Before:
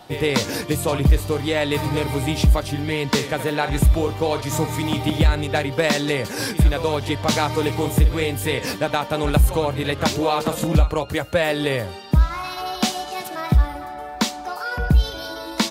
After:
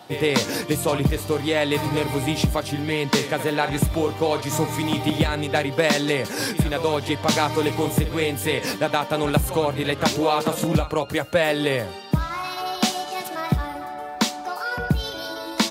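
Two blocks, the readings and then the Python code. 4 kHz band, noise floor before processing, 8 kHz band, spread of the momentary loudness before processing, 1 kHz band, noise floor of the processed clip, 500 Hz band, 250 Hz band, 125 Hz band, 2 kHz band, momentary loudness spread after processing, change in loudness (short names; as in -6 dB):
0.0 dB, -34 dBFS, 0.0 dB, 6 LU, 0.0 dB, -34 dBFS, 0.0 dB, -0.5 dB, -4.5 dB, 0.0 dB, 6 LU, -1.5 dB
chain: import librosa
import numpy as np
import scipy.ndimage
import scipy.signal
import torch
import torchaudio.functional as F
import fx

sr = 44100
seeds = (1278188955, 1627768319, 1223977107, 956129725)

y = scipy.signal.sosfilt(scipy.signal.butter(2, 120.0, 'highpass', fs=sr, output='sos'), x)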